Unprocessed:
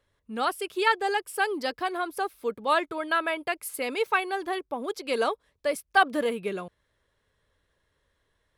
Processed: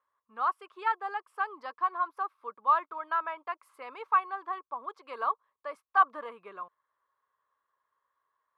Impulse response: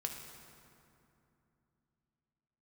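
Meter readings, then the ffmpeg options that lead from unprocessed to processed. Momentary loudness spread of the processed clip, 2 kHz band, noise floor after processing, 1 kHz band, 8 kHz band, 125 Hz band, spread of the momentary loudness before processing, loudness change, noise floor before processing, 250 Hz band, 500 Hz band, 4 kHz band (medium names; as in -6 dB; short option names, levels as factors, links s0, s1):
17 LU, -9.0 dB, under -85 dBFS, -0.5 dB, under -30 dB, no reading, 9 LU, -3.5 dB, -75 dBFS, -21.0 dB, -15.0 dB, under -15 dB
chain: -af "bandpass=f=1100:t=q:w=7.7:csg=0,volume=2.24"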